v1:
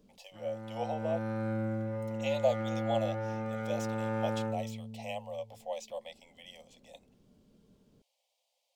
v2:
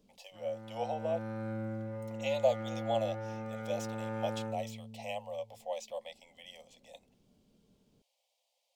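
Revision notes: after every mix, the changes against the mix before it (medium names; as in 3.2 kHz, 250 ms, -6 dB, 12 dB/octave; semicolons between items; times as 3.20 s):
background -4.5 dB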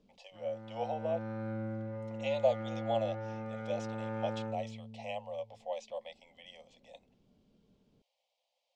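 master: add distance through air 110 m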